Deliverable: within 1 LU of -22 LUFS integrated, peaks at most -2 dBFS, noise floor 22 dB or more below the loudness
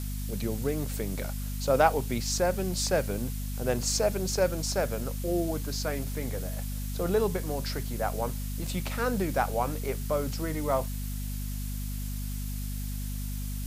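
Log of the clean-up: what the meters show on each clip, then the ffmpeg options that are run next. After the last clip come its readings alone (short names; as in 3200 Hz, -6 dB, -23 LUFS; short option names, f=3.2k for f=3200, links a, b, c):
hum 50 Hz; harmonics up to 250 Hz; hum level -31 dBFS; noise floor -34 dBFS; noise floor target -53 dBFS; loudness -30.5 LUFS; peak -8.0 dBFS; loudness target -22.0 LUFS
-> -af "bandreject=f=50:t=h:w=6,bandreject=f=100:t=h:w=6,bandreject=f=150:t=h:w=6,bandreject=f=200:t=h:w=6,bandreject=f=250:t=h:w=6"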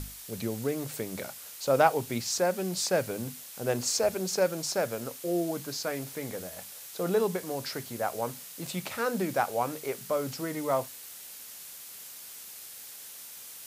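hum none; noise floor -46 dBFS; noise floor target -53 dBFS
-> -af "afftdn=nr=7:nf=-46"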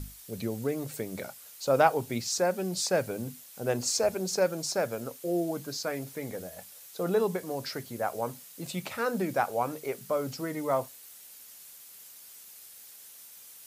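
noise floor -50 dBFS; noise floor target -53 dBFS
-> -af "afftdn=nr=6:nf=-50"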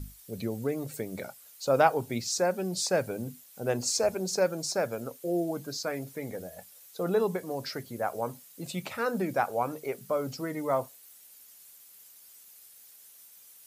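noise floor -54 dBFS; loudness -31.0 LUFS; peak -8.5 dBFS; loudness target -22.0 LUFS
-> -af "volume=9dB,alimiter=limit=-2dB:level=0:latency=1"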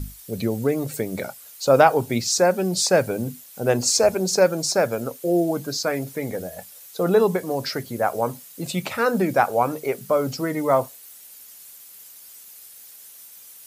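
loudness -22.0 LUFS; peak -2.0 dBFS; noise floor -45 dBFS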